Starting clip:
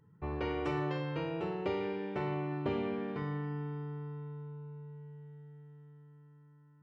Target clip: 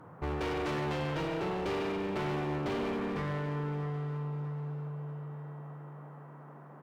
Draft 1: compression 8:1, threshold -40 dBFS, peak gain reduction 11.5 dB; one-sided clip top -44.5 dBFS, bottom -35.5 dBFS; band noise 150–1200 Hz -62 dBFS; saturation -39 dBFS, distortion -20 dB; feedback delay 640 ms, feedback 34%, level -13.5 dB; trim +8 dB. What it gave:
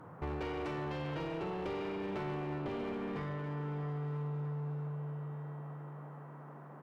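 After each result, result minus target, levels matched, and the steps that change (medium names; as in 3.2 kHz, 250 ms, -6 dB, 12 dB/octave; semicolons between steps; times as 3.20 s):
compression: peak gain reduction +11.5 dB; saturation: distortion +13 dB
remove: compression 8:1, threshold -40 dBFS, peak gain reduction 11.5 dB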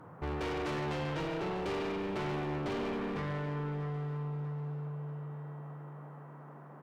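saturation: distortion +14 dB
change: saturation -30.5 dBFS, distortion -33 dB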